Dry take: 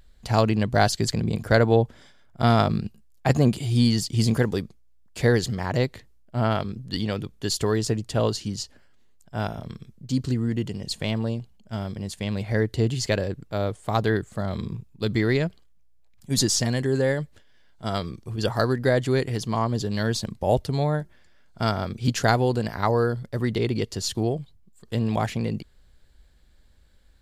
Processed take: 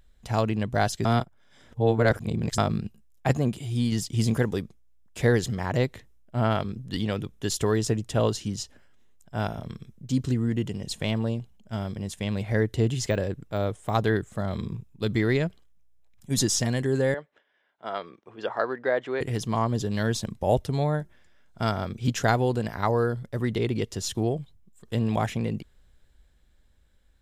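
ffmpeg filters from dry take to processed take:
ffmpeg -i in.wav -filter_complex "[0:a]asettb=1/sr,asplit=3[link_01][link_02][link_03];[link_01]atrim=end=13.104[link_04];[link_02]atrim=start=13.1:end=13.93,asetpts=PTS-STARTPTS,afade=type=in:duration=0.004:curve=qsin,afade=type=out:start_time=0.826:duration=0.004:curve=qsin,deesser=0.9[link_05];[link_03]atrim=start=13.926[link_06];[link_04][link_05]acrossfade=duration=0.004:curve1=hsin:curve2=qsin[link_07];[link_07][link_06]acrossfade=duration=0.004:curve1=qsin:curve2=hsin,asettb=1/sr,asplit=3[link_08][link_09][link_10];[link_08]atrim=end=17.144[link_11];[link_09]atrim=start=17.14:end=19.21,asetpts=PTS-STARTPTS,afade=type=in:duration=0.004:curve=qsin,afade=type=out:start_time=2.066:duration=0.004:curve=qsin,highpass=470,lowpass=2400[link_12];[link_10]atrim=start=19.206[link_13];[link_11][link_12]acrossfade=duration=0.004:curve1=hsin:curve2=qsin[link_14];[link_14][link_13]acrossfade=duration=0.004:curve1=qsin:curve2=hsin,asettb=1/sr,asplit=3[link_15][link_16][link_17];[link_15]atrim=end=21.854[link_18];[link_16]atrim=start=21.85:end=22.39,asetpts=PTS-STARTPTS,afade=type=in:duration=0.004:curve=qsin,afade=type=out:start_time=0.536:duration=0.004:curve=qsin,equalizer=frequency=9900:width=6.9:gain=-8[link_19];[link_17]atrim=start=22.386[link_20];[link_18][link_19]acrossfade=duration=0.004:curve1=hsin:curve2=qsin[link_21];[link_21][link_20]acrossfade=duration=0.004:curve1=qsin:curve2=hsin,asplit=5[link_22][link_23][link_24][link_25][link_26];[link_22]atrim=end=1.052[link_27];[link_23]atrim=start=1.048:end=2.582,asetpts=PTS-STARTPTS,areverse[link_28];[link_24]atrim=start=2.578:end=3.352[link_29];[link_25]atrim=start=3.348:end=3.922,asetpts=PTS-STARTPTS,volume=-3.5dB[link_30];[link_26]atrim=start=3.918[link_31];[link_27][link_28]acrossfade=duration=0.004:curve1=hsin:curve2=hsin[link_32];[link_32][link_29]acrossfade=duration=0.004:curve1=hsin:curve2=hsin[link_33];[link_33][link_30]acrossfade=duration=0.004:curve1=hsin:curve2=hsin[link_34];[link_34][link_31]acrossfade=duration=0.004:curve1=hsin:curve2=hsin,dynaudnorm=framelen=200:gausssize=17:maxgain=4dB,bandreject=frequency=4500:width=6.1,volume=-4.5dB" out.wav

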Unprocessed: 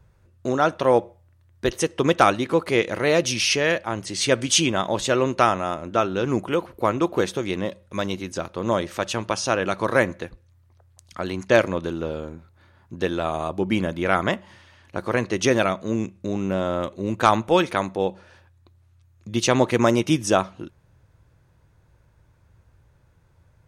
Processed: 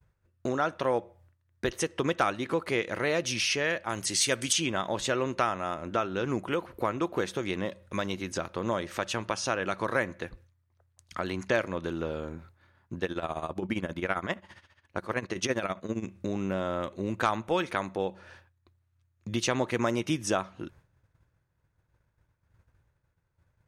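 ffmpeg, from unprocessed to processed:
ffmpeg -i in.wav -filter_complex "[0:a]asettb=1/sr,asplit=3[link_01][link_02][link_03];[link_01]atrim=end=3.894[link_04];[link_02]atrim=start=3.89:end=4.53,asetpts=PTS-STARTPTS,afade=type=in:duration=0.004:curve=qsin,afade=type=out:start_time=0.636:duration=0.004:curve=qsin,aemphasis=mode=production:type=75kf[link_05];[link_03]atrim=start=4.526[link_06];[link_04][link_05]acrossfade=duration=0.004:curve1=hsin:curve2=qsin[link_07];[link_07][link_06]acrossfade=duration=0.004:curve1=qsin:curve2=hsin,asettb=1/sr,asplit=3[link_08][link_09][link_10];[link_08]atrim=end=12.984[link_11];[link_09]atrim=start=12.98:end=16.06,asetpts=PTS-STARTPTS,afade=type=in:duration=0.004:curve=qsin,afade=type=out:start_time=3.076:duration=0.004:curve=qsin,tremolo=f=15:d=0.79[link_12];[link_10]atrim=start=16.056[link_13];[link_11][link_12]acrossfade=duration=0.004:curve1=hsin:curve2=qsin[link_14];[link_14][link_13]acrossfade=duration=0.004:curve1=qsin:curve2=hsin,agate=range=-33dB:threshold=-47dB:ratio=3:detection=peak,equalizer=frequency=1700:width=1.1:gain=4,acompressor=threshold=-32dB:ratio=2" out.wav

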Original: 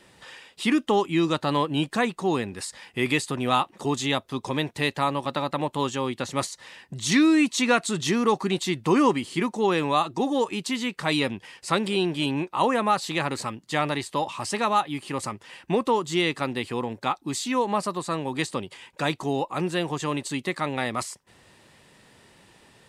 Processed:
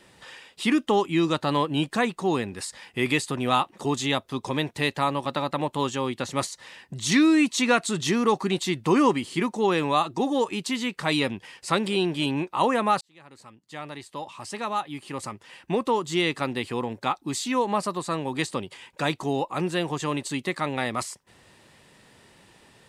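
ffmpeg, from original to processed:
ffmpeg -i in.wav -filter_complex "[0:a]asplit=2[link_01][link_02];[link_01]atrim=end=13.01,asetpts=PTS-STARTPTS,afade=type=out:start_time=13.006:duration=0.004:curve=hsin[link_03];[link_02]atrim=start=13.01,asetpts=PTS-STARTPTS,afade=type=in:duration=3.33[link_04];[link_03][link_04]concat=n=2:v=0:a=1" out.wav

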